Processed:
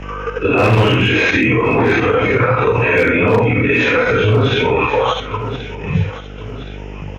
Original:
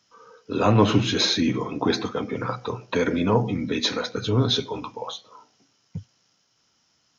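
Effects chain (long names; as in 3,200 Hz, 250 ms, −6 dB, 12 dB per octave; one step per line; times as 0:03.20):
random phases in long frames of 200 ms
drawn EQ curve 110 Hz 0 dB, 190 Hz −9 dB, 330 Hz −5 dB, 470 Hz 0 dB, 1,000 Hz −5 dB, 1,800 Hz +4 dB, 2,700 Hz +7 dB, 4,100 Hz −25 dB, 7,500 Hz −16 dB
gain into a clipping stage and back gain 17 dB
output level in coarse steps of 10 dB
hum with harmonics 50 Hz, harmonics 17, −61 dBFS −7 dB per octave
on a send: repeating echo 1,071 ms, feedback 34%, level −23.5 dB
on the sum: boost into a limiter +32 dB
multiband upward and downward compressor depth 40%
level −5 dB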